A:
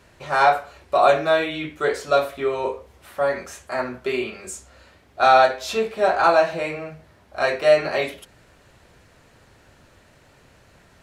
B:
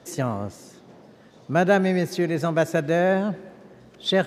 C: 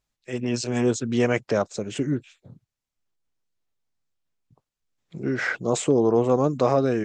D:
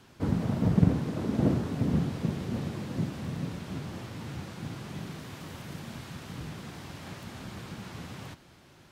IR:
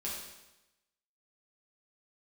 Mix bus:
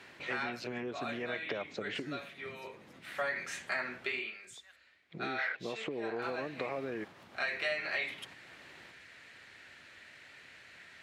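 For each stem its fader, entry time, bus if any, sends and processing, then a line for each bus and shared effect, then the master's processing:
-3.0 dB, 0.00 s, bus A, no send, graphic EQ 500/1000/2000/4000/8000 Hz -6/-6/+11/+7/+5 dB; auto duck -15 dB, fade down 0.60 s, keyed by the third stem
-8.0 dB, 0.50 s, bus B, no send, HPF 1300 Hz 12 dB/oct; differentiator
-5.5 dB, 0.00 s, bus A, no send, low shelf 400 Hz +6 dB; compressor, threshold -22 dBFS, peak gain reduction 10.5 dB; ten-band EQ 2000 Hz +9 dB, 4000 Hz +7 dB, 8000 Hz -11 dB
+1.5 dB, 0.00 s, muted 4.2–6.22, bus B, no send, compressor, threshold -39 dBFS, peak gain reduction 22 dB
bus A: 0.0 dB, compressor 8:1, threshold -31 dBFS, peak gain reduction 16 dB
bus B: 0.0 dB, compressor 6:1, threshold -49 dBFS, peak gain reduction 15 dB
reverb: off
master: HPF 73 Hz; tone controls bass -12 dB, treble -9 dB

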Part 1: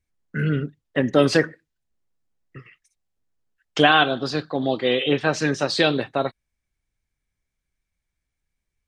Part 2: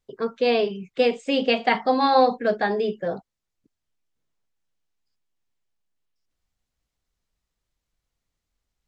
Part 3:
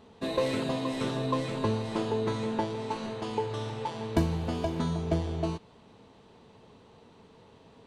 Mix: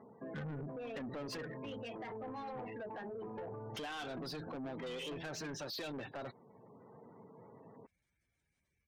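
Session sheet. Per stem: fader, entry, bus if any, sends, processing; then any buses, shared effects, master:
+2.5 dB, 0.00 s, bus A, no send, limiter -10.5 dBFS, peak gain reduction 7 dB
-5.0 dB, 0.35 s, bus A, no send, LPF 3300 Hz 6 dB/oct; harmonic-percussive split harmonic -6 dB; limiter -18 dBFS, peak gain reduction 9 dB
-0.5 dB, 0.00 s, no bus, no send, elliptic band-pass 120–2200 Hz; auto duck -6 dB, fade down 0.35 s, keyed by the first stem
bus A: 0.0 dB, HPF 81 Hz 12 dB/oct; compressor 6:1, threshold -21 dBFS, peak gain reduction 8 dB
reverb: off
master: spectral gate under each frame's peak -20 dB strong; soft clip -28 dBFS, distortion -7 dB; limiter -39.5 dBFS, peak gain reduction 11.5 dB

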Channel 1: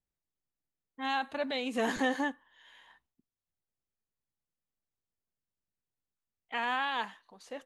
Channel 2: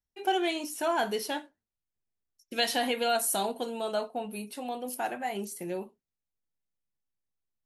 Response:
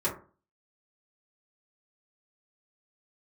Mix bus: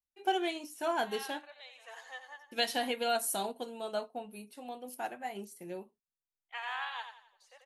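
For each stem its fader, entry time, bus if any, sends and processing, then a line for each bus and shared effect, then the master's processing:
0.0 dB, 0.00 s, no send, echo send -5 dB, Bessel high-pass 910 Hz, order 6; reverb removal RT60 0.92 s; auto duck -18 dB, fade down 1.55 s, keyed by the second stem
-2.0 dB, 0.00 s, no send, no echo send, dry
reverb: off
echo: feedback echo 88 ms, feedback 44%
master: upward expander 1.5:1, over -44 dBFS

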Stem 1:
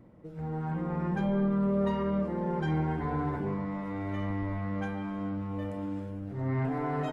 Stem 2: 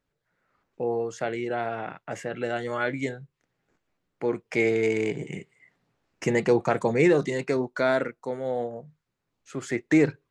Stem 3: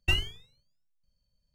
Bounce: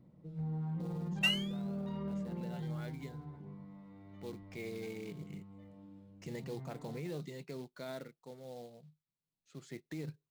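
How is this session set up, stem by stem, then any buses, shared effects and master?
2.29 s -11 dB -> 2.86 s -23 dB, 0.00 s, bus A, no send, dry
-20.0 dB, 0.00 s, bus A, no send, short-mantissa float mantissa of 2-bit
-2.0 dB, 1.15 s, no bus, no send, HPF 870 Hz
bus A: 0.0 dB, fifteen-band EQ 160 Hz +12 dB, 1600 Hz -5 dB, 4000 Hz +8 dB; limiter -33 dBFS, peak gain reduction 9 dB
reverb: off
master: dry

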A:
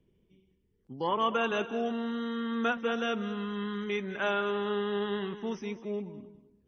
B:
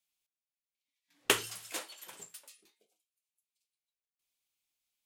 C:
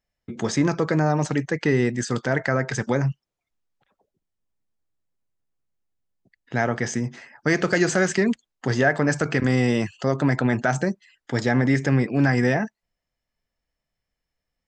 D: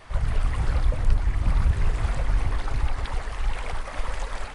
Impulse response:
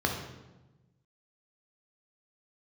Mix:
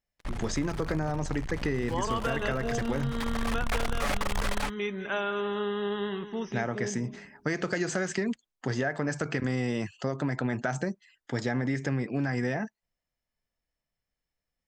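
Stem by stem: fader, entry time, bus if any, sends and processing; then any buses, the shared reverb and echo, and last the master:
+1.0 dB, 0.90 s, no send, dry
-19.5 dB, 0.95 s, no send, dry
-5.0 dB, 0.00 s, no send, dry
-5.0 dB, 0.15 s, no send, comb 7 ms, depth 72%; AGC gain up to 10 dB; fuzz box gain 28 dB, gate -37 dBFS; auto duck -13 dB, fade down 0.40 s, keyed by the third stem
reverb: off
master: compressor, threshold -25 dBFS, peak gain reduction 8 dB

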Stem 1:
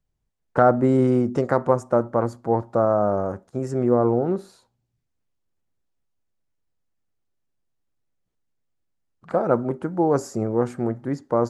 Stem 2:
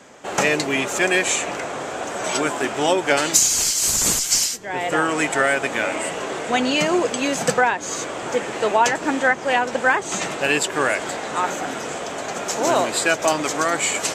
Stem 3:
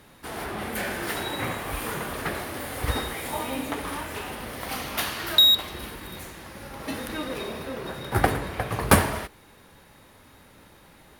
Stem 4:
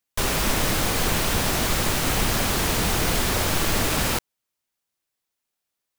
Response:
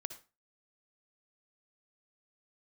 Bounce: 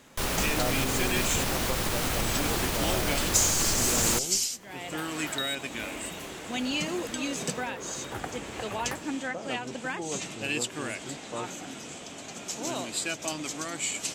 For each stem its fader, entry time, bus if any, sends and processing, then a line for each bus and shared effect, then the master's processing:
-17.0 dB, 0.00 s, no send, dry
-8.0 dB, 0.00 s, no send, band shelf 870 Hz -9.5 dB 2.6 oct
-2.5 dB, 0.00 s, no send, tone controls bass -5 dB, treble -3 dB; compressor 3:1, threshold -35 dBFS, peak gain reduction 16.5 dB; auto duck -17 dB, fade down 0.40 s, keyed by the first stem
-6.0 dB, 0.00 s, send -12.5 dB, limiter -14 dBFS, peak gain reduction 5 dB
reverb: on, RT60 0.30 s, pre-delay 53 ms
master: dry

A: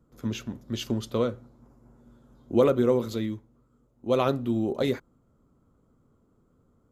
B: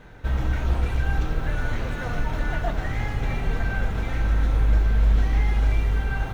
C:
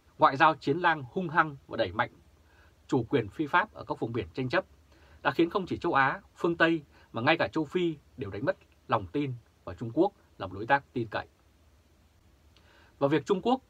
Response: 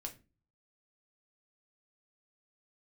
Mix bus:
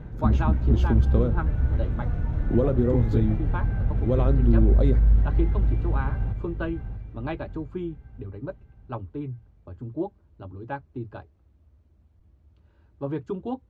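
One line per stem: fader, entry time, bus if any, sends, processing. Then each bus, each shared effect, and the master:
+2.5 dB, 0.00 s, no send, no echo send, compressor 2:1, threshold -37 dBFS, peak gain reduction 12 dB
-2.0 dB, 0.00 s, no send, echo send -19.5 dB, HPF 97 Hz 12 dB/oct; low shelf 130 Hz +9 dB; auto duck -11 dB, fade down 0.30 s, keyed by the first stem
-10.0 dB, 0.00 s, no send, no echo send, dry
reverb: off
echo: feedback echo 0.643 s, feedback 52%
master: tilt -4 dB/oct

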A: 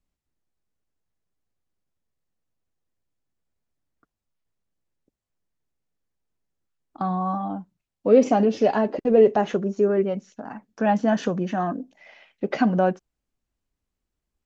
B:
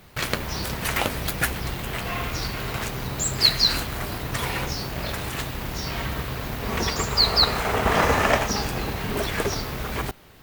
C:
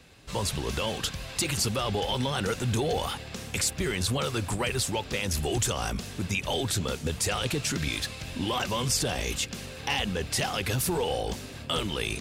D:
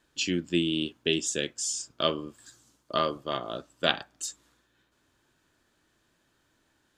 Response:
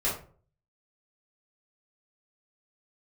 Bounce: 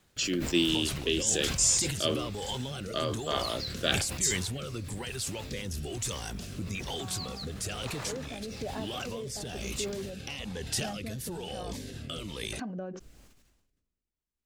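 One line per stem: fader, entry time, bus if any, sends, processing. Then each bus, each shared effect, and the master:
-10.5 dB, 0.00 s, bus A, no send, dry
-15.5 dB, 0.00 s, bus A, no send, dry
+1.0 dB, 0.40 s, bus A, no send, cascading phaser falling 1.6 Hz
0.0 dB, 0.00 s, no bus, no send, HPF 210 Hz
bus A: 0.0 dB, LPF 3800 Hz 6 dB/oct; compressor, threshold -33 dBFS, peak gain reduction 13 dB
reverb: off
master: high shelf 4900 Hz +11 dB; rotary speaker horn 1.1 Hz; sustainer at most 46 dB/s

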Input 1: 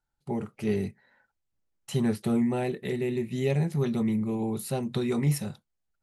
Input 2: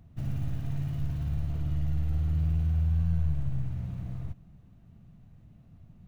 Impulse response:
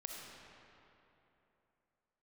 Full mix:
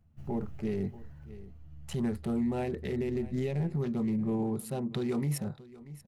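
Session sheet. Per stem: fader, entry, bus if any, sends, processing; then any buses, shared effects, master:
+1.5 dB, 0.00 s, no send, echo send -20.5 dB, Wiener smoothing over 15 samples; noise-modulated level, depth 50%
-8.0 dB, 0.00 s, no send, no echo send, notch 3700 Hz; ensemble effect; auto duck -11 dB, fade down 1.60 s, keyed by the first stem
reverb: off
echo: echo 0.633 s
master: limiter -24 dBFS, peak gain reduction 8 dB

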